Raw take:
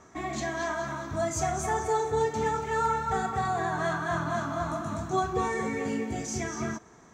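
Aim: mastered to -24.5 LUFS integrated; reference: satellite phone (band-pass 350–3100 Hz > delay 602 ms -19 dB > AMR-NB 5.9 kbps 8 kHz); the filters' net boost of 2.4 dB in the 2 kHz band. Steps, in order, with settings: band-pass 350–3100 Hz; peaking EQ 2 kHz +3.5 dB; delay 602 ms -19 dB; trim +7.5 dB; AMR-NB 5.9 kbps 8 kHz

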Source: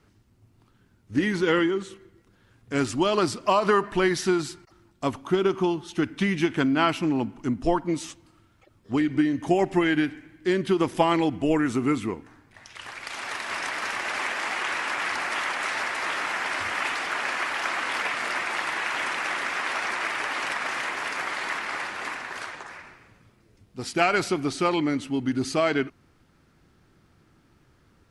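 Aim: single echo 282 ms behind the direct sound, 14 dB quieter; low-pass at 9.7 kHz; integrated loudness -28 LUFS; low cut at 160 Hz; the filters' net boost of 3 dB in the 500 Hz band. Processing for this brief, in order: high-pass 160 Hz; low-pass 9.7 kHz; peaking EQ 500 Hz +4.5 dB; delay 282 ms -14 dB; trim -3.5 dB

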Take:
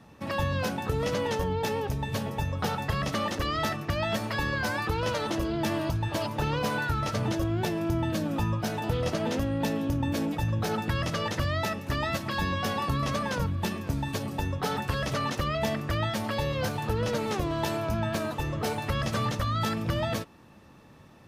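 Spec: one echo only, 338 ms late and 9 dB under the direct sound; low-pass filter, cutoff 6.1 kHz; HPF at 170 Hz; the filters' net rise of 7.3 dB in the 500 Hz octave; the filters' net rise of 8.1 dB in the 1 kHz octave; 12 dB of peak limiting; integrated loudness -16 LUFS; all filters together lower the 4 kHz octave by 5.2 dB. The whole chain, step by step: high-pass 170 Hz; low-pass 6.1 kHz; peaking EQ 500 Hz +6.5 dB; peaking EQ 1 kHz +8.5 dB; peaking EQ 4 kHz -7 dB; peak limiter -21 dBFS; delay 338 ms -9 dB; trim +13 dB

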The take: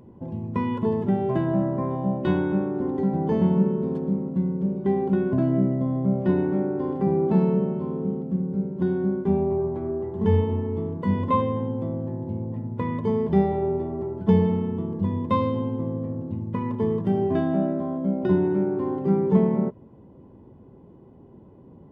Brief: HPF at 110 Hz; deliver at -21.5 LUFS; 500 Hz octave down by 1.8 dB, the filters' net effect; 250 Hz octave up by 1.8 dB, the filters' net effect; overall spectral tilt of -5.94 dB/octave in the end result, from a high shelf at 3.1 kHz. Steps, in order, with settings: high-pass 110 Hz; peaking EQ 250 Hz +4 dB; peaking EQ 500 Hz -4.5 dB; treble shelf 3.1 kHz +3 dB; trim +2.5 dB

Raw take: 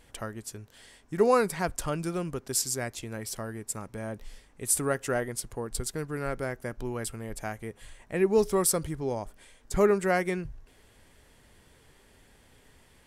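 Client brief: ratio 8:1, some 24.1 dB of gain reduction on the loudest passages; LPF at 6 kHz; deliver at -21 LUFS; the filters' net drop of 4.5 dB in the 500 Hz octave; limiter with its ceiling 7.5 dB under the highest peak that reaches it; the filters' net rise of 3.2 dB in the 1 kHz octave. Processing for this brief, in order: low-pass 6 kHz; peaking EQ 500 Hz -7 dB; peaking EQ 1 kHz +6.5 dB; compression 8:1, threshold -43 dBFS; trim +29 dB; peak limiter -8.5 dBFS

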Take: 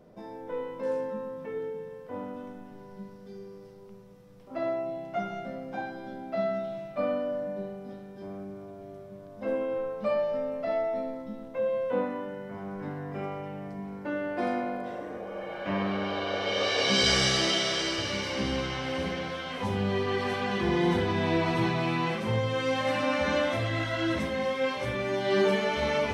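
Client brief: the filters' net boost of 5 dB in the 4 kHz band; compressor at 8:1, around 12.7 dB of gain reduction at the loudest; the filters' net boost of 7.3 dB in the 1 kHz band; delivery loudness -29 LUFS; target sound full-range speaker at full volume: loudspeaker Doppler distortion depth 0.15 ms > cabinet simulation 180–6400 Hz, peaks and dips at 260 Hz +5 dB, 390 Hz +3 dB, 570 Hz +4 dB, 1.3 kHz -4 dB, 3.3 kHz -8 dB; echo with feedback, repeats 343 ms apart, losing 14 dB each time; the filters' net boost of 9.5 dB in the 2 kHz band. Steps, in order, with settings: peaking EQ 1 kHz +7.5 dB; peaking EQ 2 kHz +8.5 dB; peaking EQ 4 kHz +8 dB; compression 8:1, threshold -25 dBFS; feedback delay 343 ms, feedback 20%, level -14 dB; loudspeaker Doppler distortion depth 0.15 ms; cabinet simulation 180–6400 Hz, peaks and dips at 260 Hz +5 dB, 390 Hz +3 dB, 570 Hz +4 dB, 1.3 kHz -4 dB, 3.3 kHz -8 dB

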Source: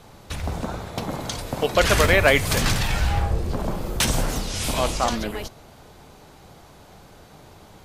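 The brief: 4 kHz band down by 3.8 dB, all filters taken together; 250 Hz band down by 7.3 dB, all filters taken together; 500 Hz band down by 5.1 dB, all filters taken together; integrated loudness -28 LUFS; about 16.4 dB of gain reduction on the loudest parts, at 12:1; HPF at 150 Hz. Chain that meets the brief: high-pass 150 Hz; peaking EQ 250 Hz -7.5 dB; peaking EQ 500 Hz -4.5 dB; peaking EQ 4 kHz -5 dB; compression 12:1, threshold -32 dBFS; trim +8.5 dB

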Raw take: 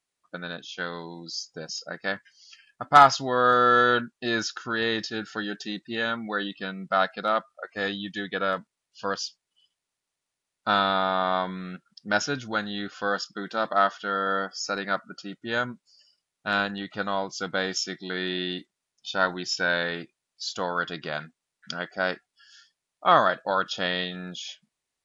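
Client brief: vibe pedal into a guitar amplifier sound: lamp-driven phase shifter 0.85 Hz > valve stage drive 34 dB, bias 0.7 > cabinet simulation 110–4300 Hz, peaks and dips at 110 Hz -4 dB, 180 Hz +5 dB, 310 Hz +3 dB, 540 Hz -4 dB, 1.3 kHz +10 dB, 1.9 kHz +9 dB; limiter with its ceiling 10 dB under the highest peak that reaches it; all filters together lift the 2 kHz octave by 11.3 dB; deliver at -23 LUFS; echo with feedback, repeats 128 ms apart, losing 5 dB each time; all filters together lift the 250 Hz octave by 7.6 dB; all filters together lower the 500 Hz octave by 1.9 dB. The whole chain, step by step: peaking EQ 250 Hz +8 dB; peaking EQ 500 Hz -3.5 dB; peaking EQ 2 kHz +6 dB; peak limiter -11.5 dBFS; feedback delay 128 ms, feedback 56%, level -5 dB; lamp-driven phase shifter 0.85 Hz; valve stage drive 34 dB, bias 0.7; cabinet simulation 110–4300 Hz, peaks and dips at 110 Hz -4 dB, 180 Hz +5 dB, 310 Hz +3 dB, 540 Hz -4 dB, 1.3 kHz +10 dB, 1.9 kHz +9 dB; trim +8.5 dB

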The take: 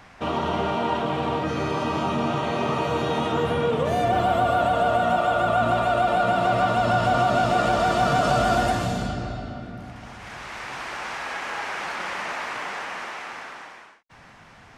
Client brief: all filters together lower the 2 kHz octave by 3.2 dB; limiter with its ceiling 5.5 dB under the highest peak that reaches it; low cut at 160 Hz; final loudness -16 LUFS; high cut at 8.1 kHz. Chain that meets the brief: high-pass 160 Hz; low-pass 8.1 kHz; peaking EQ 2 kHz -5 dB; trim +9.5 dB; peak limiter -5.5 dBFS

